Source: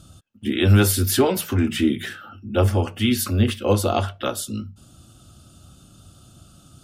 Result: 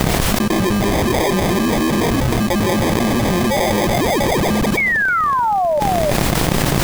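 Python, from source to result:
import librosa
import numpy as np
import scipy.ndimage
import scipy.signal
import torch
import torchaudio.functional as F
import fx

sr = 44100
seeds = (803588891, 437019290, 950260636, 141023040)

p1 = fx.local_reverse(x, sr, ms=100.0)
p2 = fx.peak_eq(p1, sr, hz=1900.0, db=6.0, octaves=0.77)
p3 = p2 + 0.96 * np.pad(p2, (int(5.4 * sr / 1000.0), 0))[:len(p2)]
p4 = fx.spec_paint(p3, sr, seeds[0], shape='rise', start_s=3.5, length_s=1.16, low_hz=510.0, high_hz=7700.0, level_db=-26.0)
p5 = fx.fuzz(p4, sr, gain_db=39.0, gate_db=-43.0)
p6 = p4 + (p5 * librosa.db_to_amplitude(-6.0))
p7 = fx.sample_hold(p6, sr, seeds[1], rate_hz=1400.0, jitter_pct=0)
p8 = fx.dmg_noise_colour(p7, sr, seeds[2], colour='pink', level_db=-45.0)
p9 = fx.spec_paint(p8, sr, seeds[3], shape='fall', start_s=4.77, length_s=1.03, low_hz=570.0, high_hz=2300.0, level_db=-18.0)
p10 = p9 + 10.0 ** (-17.0 / 20.0) * np.pad(p9, (int(310 * sr / 1000.0), 0))[:len(p9)]
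p11 = fx.env_flatten(p10, sr, amount_pct=100)
y = p11 * librosa.db_to_amplitude(-8.0)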